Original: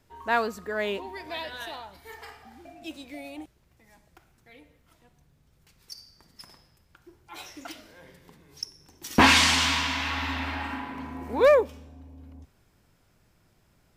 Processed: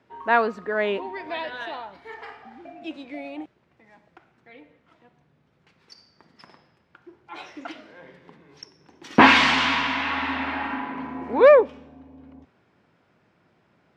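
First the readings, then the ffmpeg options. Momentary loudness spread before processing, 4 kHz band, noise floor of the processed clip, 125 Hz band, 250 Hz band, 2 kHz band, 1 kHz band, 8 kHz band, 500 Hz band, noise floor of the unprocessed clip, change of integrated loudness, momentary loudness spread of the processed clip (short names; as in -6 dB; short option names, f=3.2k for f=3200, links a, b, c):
24 LU, -1.0 dB, -65 dBFS, -3.5 dB, +4.5 dB, +4.0 dB, +5.5 dB, -11.5 dB, +5.5 dB, -65 dBFS, +4.0 dB, 24 LU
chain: -af "highpass=180,lowpass=2.6k,volume=5.5dB"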